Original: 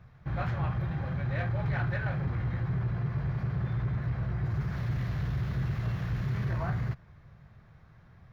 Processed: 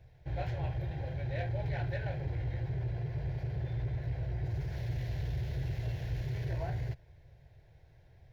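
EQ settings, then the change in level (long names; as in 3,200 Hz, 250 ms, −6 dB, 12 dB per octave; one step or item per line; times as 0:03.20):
phaser with its sweep stopped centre 500 Hz, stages 4
0.0 dB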